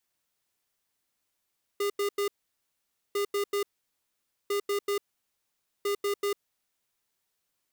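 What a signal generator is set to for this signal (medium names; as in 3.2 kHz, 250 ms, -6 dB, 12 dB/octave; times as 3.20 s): beep pattern square 405 Hz, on 0.10 s, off 0.09 s, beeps 3, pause 0.87 s, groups 4, -28 dBFS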